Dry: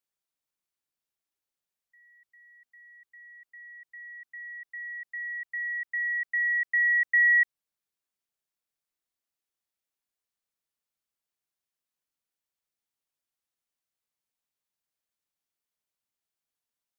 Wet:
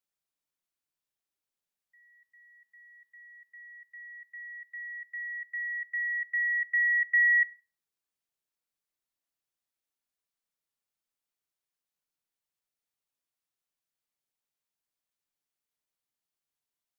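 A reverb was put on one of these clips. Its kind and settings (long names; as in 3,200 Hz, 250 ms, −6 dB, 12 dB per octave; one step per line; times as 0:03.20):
rectangular room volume 380 cubic metres, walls furnished, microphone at 0.38 metres
level −2 dB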